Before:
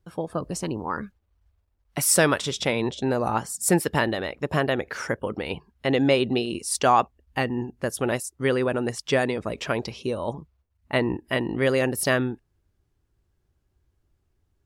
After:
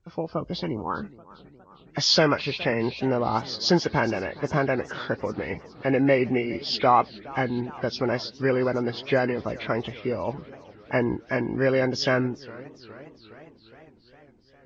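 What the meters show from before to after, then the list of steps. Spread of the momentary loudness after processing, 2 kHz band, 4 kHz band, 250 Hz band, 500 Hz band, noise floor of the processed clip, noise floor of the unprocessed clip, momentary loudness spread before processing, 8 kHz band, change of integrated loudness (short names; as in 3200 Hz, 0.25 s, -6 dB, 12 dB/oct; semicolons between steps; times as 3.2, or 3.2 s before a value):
12 LU, -1.0 dB, +3.5 dB, 0.0 dB, 0.0 dB, -55 dBFS, -72 dBFS, 10 LU, -12.5 dB, -0.5 dB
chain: nonlinear frequency compression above 1300 Hz 1.5:1; warbling echo 0.41 s, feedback 69%, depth 192 cents, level -20.5 dB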